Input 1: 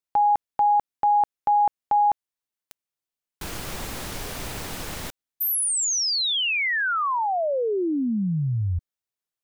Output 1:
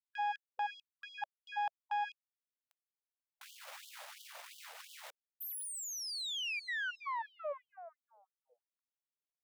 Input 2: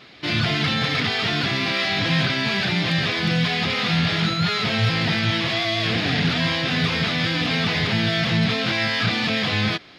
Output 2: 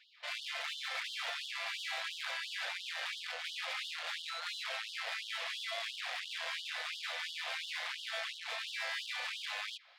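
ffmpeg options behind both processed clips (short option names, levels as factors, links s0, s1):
-af "aeval=exprs='(tanh(14.1*val(0)+0.75)-tanh(0.75))/14.1':c=same,bass=f=250:g=8,treble=f=4000:g=-6,afftfilt=real='re*gte(b*sr/1024,470*pow(2900/470,0.5+0.5*sin(2*PI*2.9*pts/sr)))':imag='im*gte(b*sr/1024,470*pow(2900/470,0.5+0.5*sin(2*PI*2.9*pts/sr)))':win_size=1024:overlap=0.75,volume=0.376"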